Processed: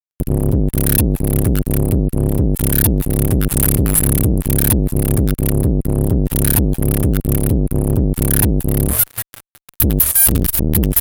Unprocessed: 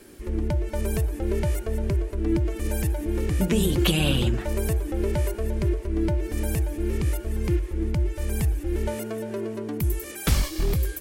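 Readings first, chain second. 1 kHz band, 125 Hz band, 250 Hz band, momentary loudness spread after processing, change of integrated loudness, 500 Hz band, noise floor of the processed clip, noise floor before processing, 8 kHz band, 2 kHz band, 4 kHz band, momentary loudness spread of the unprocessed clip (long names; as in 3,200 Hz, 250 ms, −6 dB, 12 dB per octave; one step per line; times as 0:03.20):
+6.5 dB, +10.5 dB, +10.5 dB, 4 LU, +11.5 dB, +6.0 dB, −61 dBFS, −38 dBFS, +18.5 dB, +5.0 dB, +1.5 dB, 6 LU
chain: inverse Chebyshev band-stop filter 200–6,000 Hz, stop band 40 dB
low-shelf EQ 340 Hz −9.5 dB
fuzz pedal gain 45 dB, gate −49 dBFS
saturating transformer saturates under 300 Hz
level +8 dB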